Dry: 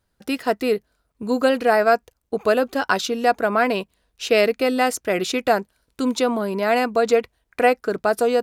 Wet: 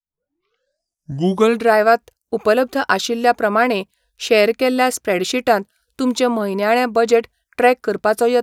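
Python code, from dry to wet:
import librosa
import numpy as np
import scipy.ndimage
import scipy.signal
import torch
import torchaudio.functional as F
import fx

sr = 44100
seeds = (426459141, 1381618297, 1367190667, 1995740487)

y = fx.tape_start_head(x, sr, length_s=1.73)
y = fx.noise_reduce_blind(y, sr, reduce_db=23)
y = y * librosa.db_to_amplitude(3.5)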